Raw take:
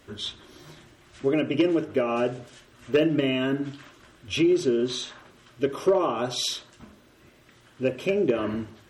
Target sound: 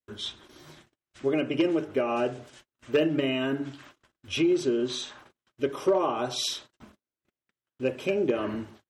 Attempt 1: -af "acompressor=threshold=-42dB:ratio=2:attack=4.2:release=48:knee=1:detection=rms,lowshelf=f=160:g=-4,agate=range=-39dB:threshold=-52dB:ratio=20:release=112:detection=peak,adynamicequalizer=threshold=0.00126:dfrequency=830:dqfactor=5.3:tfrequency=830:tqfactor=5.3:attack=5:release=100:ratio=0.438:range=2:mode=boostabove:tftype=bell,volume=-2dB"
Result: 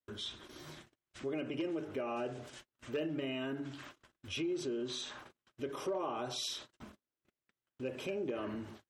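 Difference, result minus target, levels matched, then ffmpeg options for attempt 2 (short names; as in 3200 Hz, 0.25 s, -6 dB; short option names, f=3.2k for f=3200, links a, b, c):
compressor: peak gain reduction +14 dB
-af "lowshelf=f=160:g=-4,agate=range=-39dB:threshold=-52dB:ratio=20:release=112:detection=peak,adynamicequalizer=threshold=0.00126:dfrequency=830:dqfactor=5.3:tfrequency=830:tqfactor=5.3:attack=5:release=100:ratio=0.438:range=2:mode=boostabove:tftype=bell,volume=-2dB"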